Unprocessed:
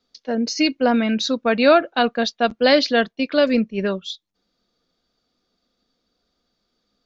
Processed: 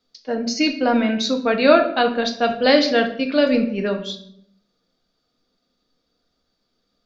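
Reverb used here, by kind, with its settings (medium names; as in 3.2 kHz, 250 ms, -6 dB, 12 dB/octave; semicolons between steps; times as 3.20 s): simulated room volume 130 m³, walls mixed, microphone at 0.51 m; trim -1 dB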